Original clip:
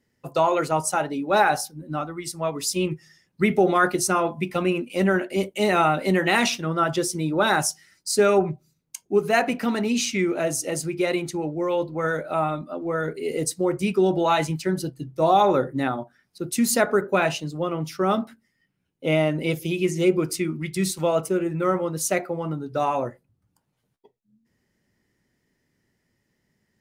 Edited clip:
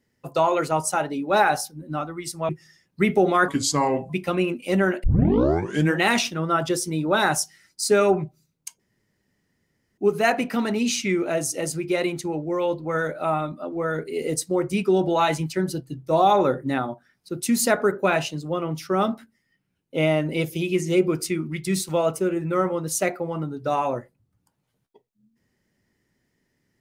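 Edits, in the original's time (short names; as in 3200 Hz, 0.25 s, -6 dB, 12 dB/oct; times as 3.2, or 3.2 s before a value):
2.49–2.9 cut
3.89–4.37 speed 78%
5.31 tape start 0.96 s
9.07 insert room tone 1.18 s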